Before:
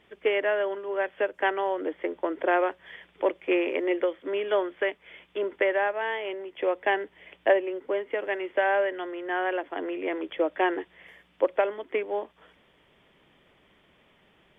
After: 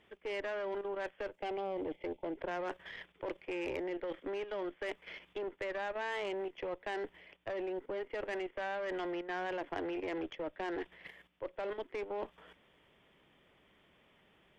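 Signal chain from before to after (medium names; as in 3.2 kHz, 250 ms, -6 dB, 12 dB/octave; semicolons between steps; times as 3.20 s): time-frequency box 1.37–2.38 s, 910–2000 Hz -15 dB; reverse; compression 20:1, threshold -32 dBFS, peak gain reduction 18 dB; reverse; Chebyshev shaper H 8 -24 dB, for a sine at -22 dBFS; level held to a coarse grid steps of 10 dB; trim +2.5 dB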